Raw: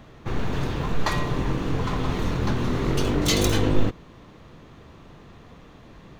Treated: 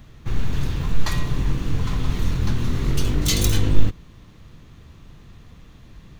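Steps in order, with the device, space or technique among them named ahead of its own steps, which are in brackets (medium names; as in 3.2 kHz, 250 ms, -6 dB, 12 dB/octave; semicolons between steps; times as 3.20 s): smiley-face EQ (bass shelf 120 Hz +8 dB; peaking EQ 610 Hz -8.5 dB 2.6 oct; treble shelf 7.3 kHz +7.5 dB)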